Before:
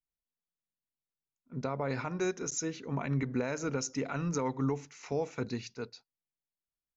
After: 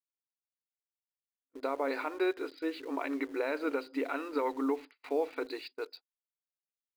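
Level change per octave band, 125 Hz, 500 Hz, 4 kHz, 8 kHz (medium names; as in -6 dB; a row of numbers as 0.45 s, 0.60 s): under -35 dB, +2.5 dB, -1.0 dB, no reading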